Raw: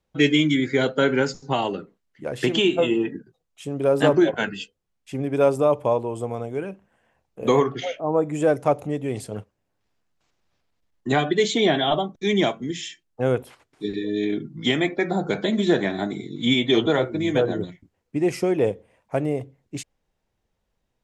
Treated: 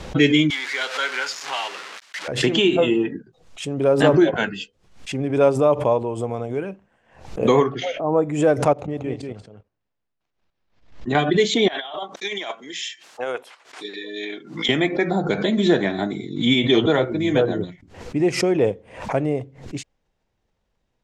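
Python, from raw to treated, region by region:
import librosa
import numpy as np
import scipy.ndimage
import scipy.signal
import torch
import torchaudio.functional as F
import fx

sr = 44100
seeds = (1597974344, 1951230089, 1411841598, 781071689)

y = fx.chain(x, sr, fx.zero_step(step_db=-23.5),
    fx.highpass(hz=1300.0, slope=12),
    fx.high_shelf(hz=8000.0, db=-7.0), at=(0.5, 2.28))
y = fx.chain(y, sr, fx.air_absorb(metres=84.0),
    fx.level_steps(step_db=14),
    fx.echo_single(ms=188, db=-4.5), at=(8.73, 11.15))
y = fx.chain(y, sr, fx.highpass(hz=750.0, slope=12),
    fx.over_compress(threshold_db=-29.0, ratio=-0.5), at=(11.68, 14.69))
y = scipy.signal.sosfilt(scipy.signal.butter(2, 7000.0, 'lowpass', fs=sr, output='sos'), y)
y = fx.pre_swell(y, sr, db_per_s=110.0)
y = F.gain(torch.from_numpy(y), 2.0).numpy()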